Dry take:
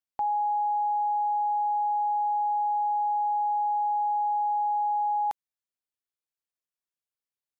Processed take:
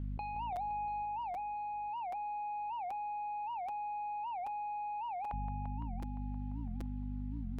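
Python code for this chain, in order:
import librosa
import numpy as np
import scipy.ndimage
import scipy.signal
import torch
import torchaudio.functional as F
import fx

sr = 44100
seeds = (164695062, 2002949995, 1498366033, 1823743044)

y = fx.dereverb_blind(x, sr, rt60_s=1.0)
y = fx.cheby_harmonics(y, sr, harmonics=(5,), levels_db=(-10,), full_scale_db=-22.0)
y = fx.add_hum(y, sr, base_hz=50, snr_db=30)
y = fx.over_compress(y, sr, threshold_db=-43.0, ratio=-1.0)
y = fx.air_absorb(y, sr, metres=480.0)
y = fx.echo_heads(y, sr, ms=172, heads='first and second', feedback_pct=63, wet_db=-10)
y = fx.buffer_crackle(y, sr, first_s=0.56, period_s=0.78, block=256, kind='repeat')
y = fx.record_warp(y, sr, rpm=78.0, depth_cents=250.0)
y = y * 10.0 ** (5.0 / 20.0)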